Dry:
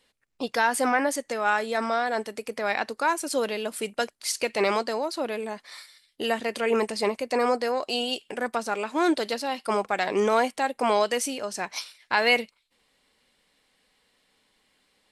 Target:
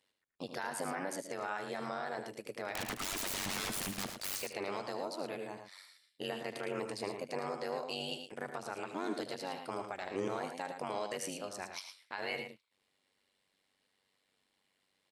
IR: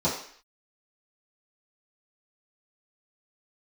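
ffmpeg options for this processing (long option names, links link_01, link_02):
-filter_complex "[0:a]highpass=frequency=74:width=0.5412,highpass=frequency=74:width=1.3066,alimiter=limit=-17.5dB:level=0:latency=1:release=105,asettb=1/sr,asplit=3[link_01][link_02][link_03];[link_01]atrim=end=2.754[link_04];[link_02]atrim=start=2.75:end=4.42,asetpts=PTS-STARTPTS,afade=type=in:duration=0.004:curve=qsin,afade=type=out:start_time=1.666:duration=0.004:curve=qsin,aeval=exprs='0.0631*sin(PI/2*5.62*val(0)/0.0631)':channel_layout=same[link_05];[link_03]atrim=start=4.416[link_06];[link_04][link_05]acrossfade=duration=0.004:curve1=hsin:curve2=qsin[link_07];[link_07][link_06]acrossfade=duration=0.004:curve1=qsin:curve2=hsin,tremolo=f=96:d=0.974,aecho=1:1:75.8|110.8:0.282|0.398,volume=-7.5dB"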